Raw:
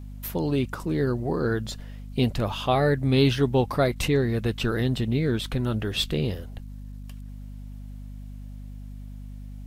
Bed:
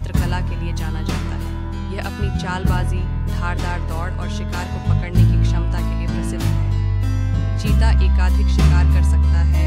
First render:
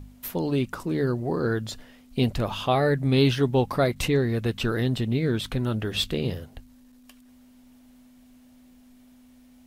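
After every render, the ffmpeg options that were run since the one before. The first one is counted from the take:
ffmpeg -i in.wav -af "bandreject=frequency=50:width_type=h:width=4,bandreject=frequency=100:width_type=h:width=4,bandreject=frequency=150:width_type=h:width=4,bandreject=frequency=200:width_type=h:width=4" out.wav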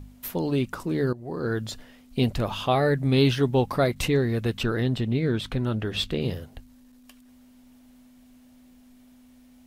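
ffmpeg -i in.wav -filter_complex "[0:a]asettb=1/sr,asplit=3[link_01][link_02][link_03];[link_01]atrim=end=4.634[link_04];[link_02]atrim=start=4.63:end=6.21,asetpts=PTS-STARTPTS,afade=type=in:duration=0.004:curve=qsin,afade=type=out:start_time=1.576:duration=0.004:curve=qsin,highshelf=frequency=7300:gain=-9.5[link_05];[link_03]atrim=start=6.206[link_06];[link_04][link_05]acrossfade=duration=0.004:curve1=hsin:curve2=qsin[link_07];[link_07][link_06]acrossfade=duration=0.004:curve1=qsin:curve2=hsin,asplit=2[link_08][link_09];[link_08]atrim=end=1.13,asetpts=PTS-STARTPTS,afade=type=out:start_time=1.126:duration=0.004:curve=hsin:silence=0.149624[link_10];[link_09]atrim=start=1.13,asetpts=PTS-STARTPTS,afade=type=in:duration=0.48:silence=0.149624[link_11];[link_10][link_11]concat=n=2:v=0:a=1" out.wav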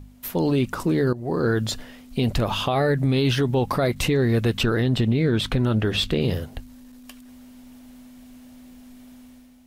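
ffmpeg -i in.wav -af "dynaudnorm=framelen=110:gausssize=7:maxgain=8dB,alimiter=limit=-13dB:level=0:latency=1:release=58" out.wav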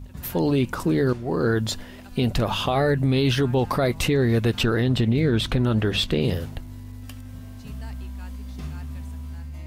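ffmpeg -i in.wav -i bed.wav -filter_complex "[1:a]volume=-20.5dB[link_01];[0:a][link_01]amix=inputs=2:normalize=0" out.wav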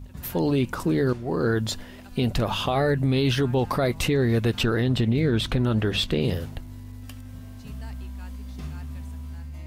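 ffmpeg -i in.wav -af "volume=-1.5dB" out.wav

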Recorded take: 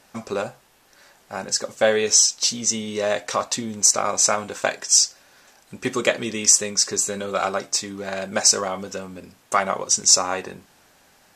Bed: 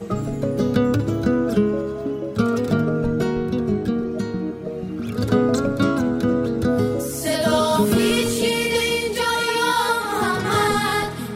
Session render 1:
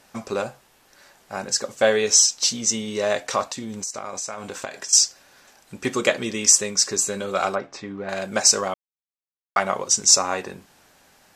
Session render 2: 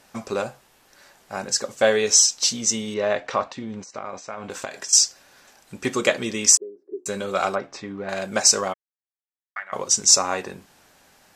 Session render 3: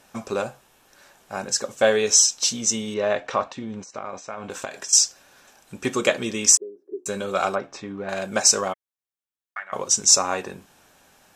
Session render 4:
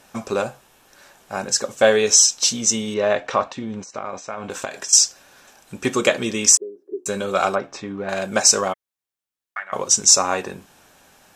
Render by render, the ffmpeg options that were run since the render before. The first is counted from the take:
ffmpeg -i in.wav -filter_complex "[0:a]asettb=1/sr,asplit=3[link_01][link_02][link_03];[link_01]atrim=end=3.464[link_04];[link_02]atrim=start=3.46:end=4.93,asetpts=PTS-STARTPTS,afade=type=in:duration=0.004:curve=qsin,afade=type=out:start_time=1.466:duration=0.004:curve=qsin,acompressor=threshold=-27dB:ratio=8:attack=3.2:release=140:knee=1:detection=peak[link_05];[link_03]atrim=start=4.926[link_06];[link_04][link_05]acrossfade=duration=0.004:curve1=hsin:curve2=qsin[link_07];[link_07][link_06]acrossfade=duration=0.004:curve1=qsin:curve2=hsin,asettb=1/sr,asplit=3[link_08][link_09][link_10];[link_08]atrim=end=7.554[link_11];[link_09]atrim=start=7.55:end=8.09,asetpts=PTS-STARTPTS,afade=type=in:duration=0.004:curve=qsin,afade=type=out:start_time=0.536:duration=0.004:curve=qsin,lowpass=2100[link_12];[link_10]atrim=start=8.086[link_13];[link_11][link_12]acrossfade=duration=0.004:curve1=hsin:curve2=qsin[link_14];[link_14][link_13]acrossfade=duration=0.004:curve1=qsin:curve2=hsin,asplit=3[link_15][link_16][link_17];[link_15]atrim=end=8.74,asetpts=PTS-STARTPTS,afade=type=out:start_time=8.736:duration=0.004:curve=hsin[link_18];[link_16]atrim=start=8.74:end=9.56,asetpts=PTS-STARTPTS,volume=0[link_19];[link_17]atrim=start=9.56,asetpts=PTS-STARTPTS,afade=type=in:duration=0.004:curve=hsin[link_20];[link_18][link_19][link_20]concat=n=3:v=0:a=1" out.wav
ffmpeg -i in.wav -filter_complex "[0:a]asettb=1/sr,asplit=3[link_01][link_02][link_03];[link_01]atrim=end=2.944[link_04];[link_02]atrim=start=2.94:end=4.5,asetpts=PTS-STARTPTS,afade=type=in:duration=0.004:curve=qsin,afade=type=out:start_time=1.556:duration=0.004:curve=qsin,lowpass=3000[link_05];[link_03]atrim=start=4.496[link_06];[link_04][link_05]acrossfade=duration=0.004:curve1=hsin:curve2=qsin[link_07];[link_07][link_06]acrossfade=duration=0.004:curve1=qsin:curve2=hsin,asettb=1/sr,asplit=3[link_08][link_09][link_10];[link_08]atrim=end=6.574[link_11];[link_09]atrim=start=6.57:end=7.06,asetpts=PTS-STARTPTS,afade=type=in:duration=0.004:curve=qsin,afade=type=out:start_time=0.486:duration=0.004:curve=qsin,asuperpass=centerf=360:order=4:qfactor=3.9[link_12];[link_10]atrim=start=7.056[link_13];[link_11][link_12]acrossfade=duration=0.004:curve1=hsin:curve2=qsin[link_14];[link_14][link_13]acrossfade=duration=0.004:curve1=qsin:curve2=hsin,asplit=3[link_15][link_16][link_17];[link_15]afade=type=out:start_time=8.72:duration=0.02[link_18];[link_16]bandpass=frequency=1800:width_type=q:width=6.5,afade=type=in:start_time=8.72:duration=0.02,afade=type=out:start_time=9.72:duration=0.02[link_19];[link_17]afade=type=in:start_time=9.72:duration=0.02[link_20];[link_18][link_19][link_20]amix=inputs=3:normalize=0" out.wav
ffmpeg -i in.wav -af "equalizer=frequency=4600:width_type=o:width=0.21:gain=-5.5,bandreject=frequency=2000:width=12" out.wav
ffmpeg -i in.wav -af "volume=3.5dB,alimiter=limit=-1dB:level=0:latency=1" out.wav

